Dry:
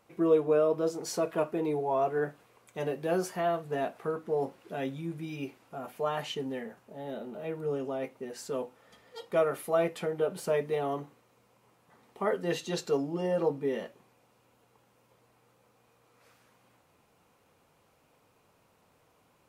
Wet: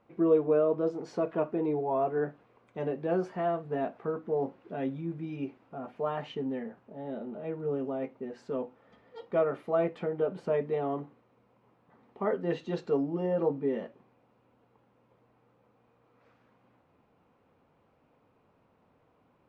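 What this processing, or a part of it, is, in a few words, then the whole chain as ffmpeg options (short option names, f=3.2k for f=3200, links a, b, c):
phone in a pocket: -af "lowpass=3.7k,equalizer=f=250:t=o:w=0.64:g=4,highshelf=f=2.2k:g=-10.5"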